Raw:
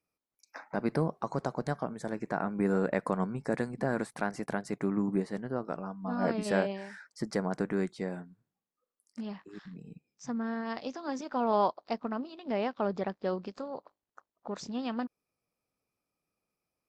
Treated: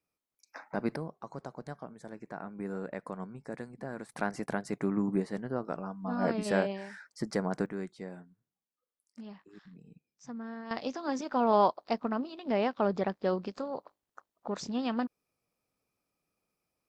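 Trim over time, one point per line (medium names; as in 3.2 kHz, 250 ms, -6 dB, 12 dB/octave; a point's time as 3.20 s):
-1 dB
from 0.96 s -9.5 dB
from 4.09 s 0 dB
from 7.66 s -7 dB
from 10.71 s +2.5 dB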